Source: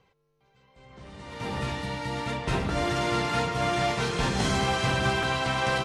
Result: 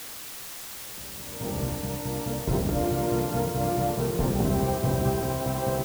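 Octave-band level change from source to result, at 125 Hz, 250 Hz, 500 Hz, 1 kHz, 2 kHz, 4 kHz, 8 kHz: +2.5, +3.0, +2.0, -3.5, -12.5, -8.5, +2.5 dB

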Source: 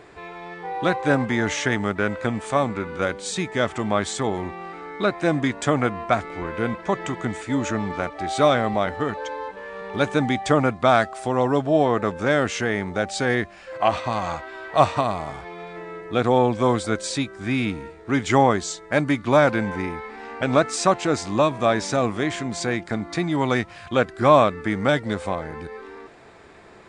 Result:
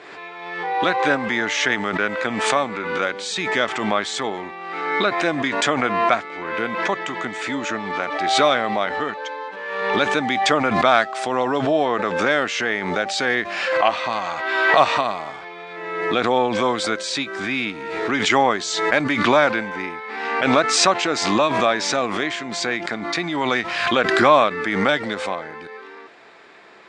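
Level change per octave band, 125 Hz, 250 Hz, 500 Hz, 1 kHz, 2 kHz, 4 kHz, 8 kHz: -7.5, -1.5, +0.5, +3.5, +6.5, +8.0, +4.0 dB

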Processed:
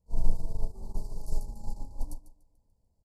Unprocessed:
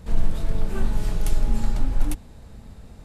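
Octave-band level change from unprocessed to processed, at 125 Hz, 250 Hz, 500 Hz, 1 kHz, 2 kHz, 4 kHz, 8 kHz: -11.0 dB, -15.0 dB, -12.5 dB, -12.5 dB, under -40 dB, -16.5 dB, -12.5 dB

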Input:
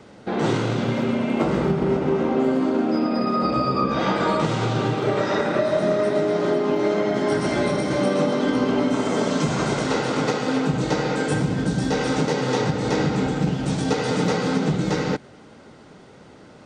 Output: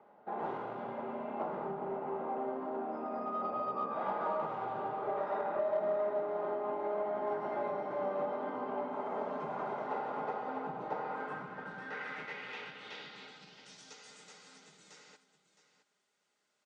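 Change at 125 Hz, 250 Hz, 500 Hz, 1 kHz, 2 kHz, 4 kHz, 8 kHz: -30.0 dB, -24.0 dB, -14.5 dB, -10.0 dB, -16.5 dB, -23.0 dB, under -25 dB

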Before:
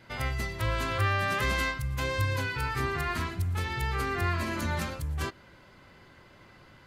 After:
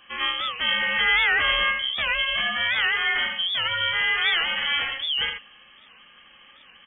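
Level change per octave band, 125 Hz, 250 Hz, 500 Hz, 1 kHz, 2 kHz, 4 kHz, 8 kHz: -19.0 dB, -9.0 dB, -3.0 dB, +2.5 dB, +11.0 dB, +18.0 dB, under -35 dB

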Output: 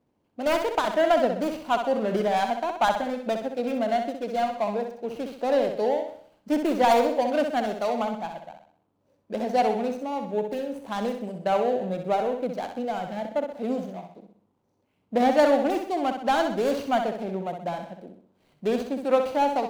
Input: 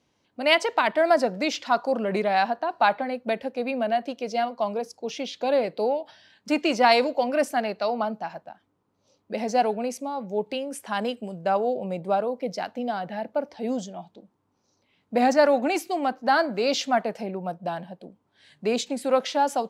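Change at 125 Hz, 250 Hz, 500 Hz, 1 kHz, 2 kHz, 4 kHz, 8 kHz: +1.0, +0.5, 0.0, -0.5, -5.0, -6.0, -6.0 dB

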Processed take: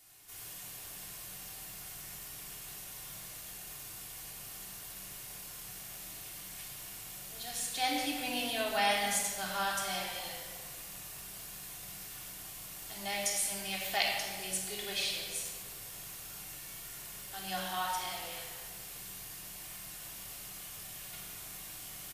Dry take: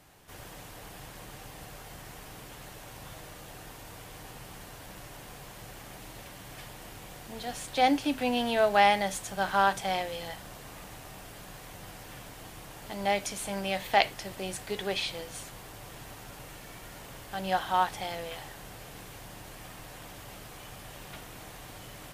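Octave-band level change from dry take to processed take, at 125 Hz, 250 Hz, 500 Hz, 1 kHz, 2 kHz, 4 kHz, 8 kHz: -8.5, -9.5, -10.0, -9.0, -4.0, 0.0, +5.5 dB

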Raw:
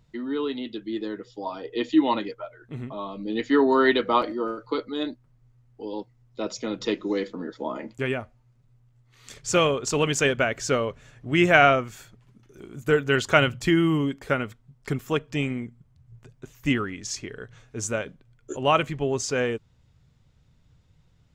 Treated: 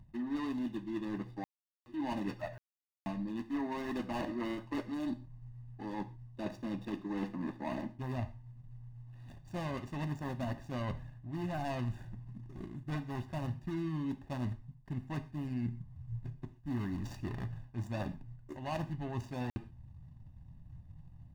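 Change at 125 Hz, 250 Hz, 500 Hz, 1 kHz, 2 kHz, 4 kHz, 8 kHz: -6.5, -10.5, -19.0, -16.5, -22.0, -21.5, -27.0 dB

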